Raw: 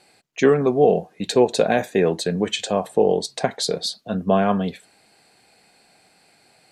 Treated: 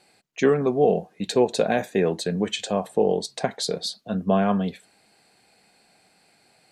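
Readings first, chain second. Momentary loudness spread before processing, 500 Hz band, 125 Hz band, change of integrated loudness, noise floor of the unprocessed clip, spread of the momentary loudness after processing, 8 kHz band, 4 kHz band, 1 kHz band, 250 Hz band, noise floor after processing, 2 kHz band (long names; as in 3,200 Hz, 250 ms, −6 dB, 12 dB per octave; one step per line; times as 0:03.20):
9 LU, −3.5 dB, −2.0 dB, −3.0 dB, −58 dBFS, 8 LU, −3.5 dB, −3.5 dB, −3.5 dB, −2.0 dB, −61 dBFS, −3.5 dB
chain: parametric band 200 Hz +3 dB 0.33 octaves
level −3.5 dB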